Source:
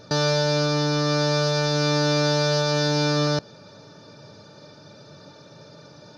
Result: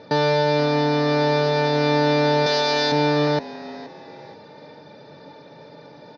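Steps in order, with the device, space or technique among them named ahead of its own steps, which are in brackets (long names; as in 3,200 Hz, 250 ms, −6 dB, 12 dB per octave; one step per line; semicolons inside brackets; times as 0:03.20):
0:02.46–0:02.92: RIAA equalisation recording
frequency-shifting delay pedal into a guitar cabinet (echo with shifted repeats 474 ms, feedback 35%, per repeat +110 Hz, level −18 dB; loudspeaker in its box 86–4,300 Hz, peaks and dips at 110 Hz −7 dB, 270 Hz +5 dB, 470 Hz +7 dB, 860 Hz +9 dB, 1,300 Hz −5 dB, 2,000 Hz +9 dB)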